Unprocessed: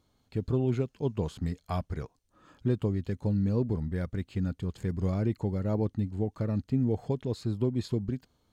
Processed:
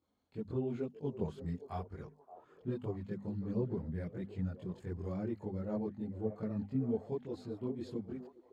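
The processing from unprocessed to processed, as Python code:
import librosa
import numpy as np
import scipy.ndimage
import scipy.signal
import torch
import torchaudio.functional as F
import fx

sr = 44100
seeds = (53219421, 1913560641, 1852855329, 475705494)

y = scipy.signal.sosfilt(scipy.signal.butter(2, 100.0, 'highpass', fs=sr, output='sos'), x)
y = fx.high_shelf(y, sr, hz=2500.0, db=-9.0)
y = fx.hum_notches(y, sr, base_hz=50, count=5)
y = fx.chorus_voices(y, sr, voices=4, hz=0.99, base_ms=22, depth_ms=3.0, mix_pct=65)
y = fx.echo_stepped(y, sr, ms=574, hz=540.0, octaves=0.7, feedback_pct=70, wet_db=-9.5)
y = y * librosa.db_to_amplitude(-4.5)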